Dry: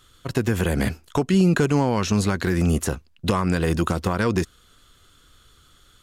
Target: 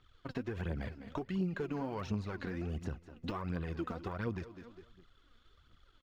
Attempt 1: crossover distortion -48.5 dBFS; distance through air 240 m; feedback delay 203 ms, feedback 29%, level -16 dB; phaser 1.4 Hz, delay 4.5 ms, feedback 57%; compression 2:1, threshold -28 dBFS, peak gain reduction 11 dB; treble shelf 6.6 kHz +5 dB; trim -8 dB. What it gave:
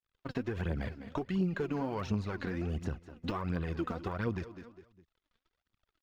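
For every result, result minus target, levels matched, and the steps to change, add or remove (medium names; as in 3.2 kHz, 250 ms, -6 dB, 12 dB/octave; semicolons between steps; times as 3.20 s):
crossover distortion: distortion +10 dB; compression: peak gain reduction -3.5 dB
change: crossover distortion -60.5 dBFS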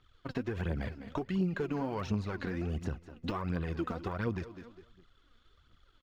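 compression: peak gain reduction -3.5 dB
change: compression 2:1, threshold -35 dBFS, peak gain reduction 14.5 dB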